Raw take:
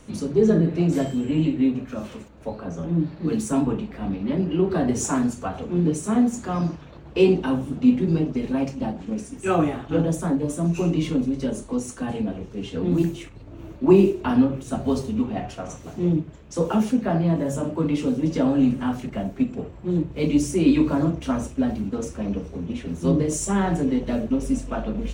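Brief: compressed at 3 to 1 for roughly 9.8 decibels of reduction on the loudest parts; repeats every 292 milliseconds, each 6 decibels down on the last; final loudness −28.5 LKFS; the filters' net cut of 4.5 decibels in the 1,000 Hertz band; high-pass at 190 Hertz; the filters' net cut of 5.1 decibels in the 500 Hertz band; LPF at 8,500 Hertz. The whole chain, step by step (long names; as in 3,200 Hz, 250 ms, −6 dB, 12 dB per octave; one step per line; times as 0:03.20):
high-pass filter 190 Hz
low-pass filter 8,500 Hz
parametric band 500 Hz −6.5 dB
parametric band 1,000 Hz −3.5 dB
downward compressor 3 to 1, threshold −28 dBFS
repeating echo 292 ms, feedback 50%, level −6 dB
level +2.5 dB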